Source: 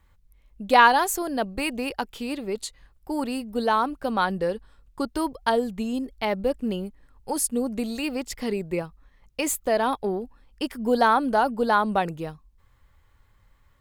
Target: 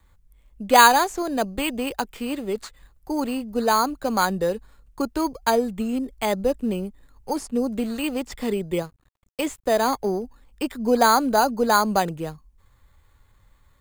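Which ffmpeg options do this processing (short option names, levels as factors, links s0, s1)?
-filter_complex "[0:a]acrossover=split=5700[s0][s1];[s1]acompressor=threshold=0.00224:ratio=4:attack=1:release=60[s2];[s0][s2]amix=inputs=2:normalize=0,acrossover=split=160|720|4000[s3][s4][s5][s6];[s5]acrusher=samples=8:mix=1:aa=0.000001[s7];[s3][s4][s7][s6]amix=inputs=4:normalize=0,asettb=1/sr,asplit=3[s8][s9][s10];[s8]atrim=end=8.814[s11];[s9]atrim=start=8.81:end=9.82,asetpts=PTS-STARTPTS,afade=t=in:d=0.004:c=qsin,afade=t=out:st=1.006:d=0.004:c=qsin,aeval=exprs='sgn(val(0))*max(abs(val(0))-0.00282,0)':c=same[s12];[s10]atrim=start=9.816[s13];[s11][s12]acrossfade=d=0.004:c1=hsin:c2=qsin[s14];[s14][s13]acrossfade=d=0.004:c1=qsin:c2=hsin,volume=1.33"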